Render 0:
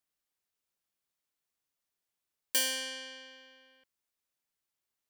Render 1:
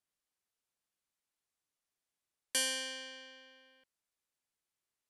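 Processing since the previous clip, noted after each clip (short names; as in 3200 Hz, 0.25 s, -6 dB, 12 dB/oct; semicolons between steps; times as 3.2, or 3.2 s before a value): Chebyshev low-pass 12000 Hz, order 5; gain -1.5 dB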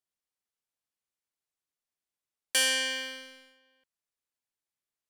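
dynamic EQ 2100 Hz, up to +6 dB, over -52 dBFS, Q 1.5; sample leveller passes 2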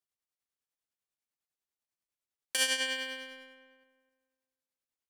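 tremolo triangle 10 Hz, depth 70%; darkening echo 0.256 s, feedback 33%, low-pass 2200 Hz, level -11.5 dB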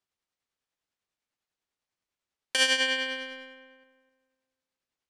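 air absorption 72 m; gain +7.5 dB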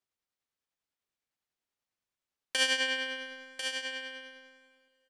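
on a send: echo 1.045 s -7.5 dB; on the sum: plate-style reverb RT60 3.7 s, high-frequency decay 0.75×, DRR 19.5 dB; gain -4 dB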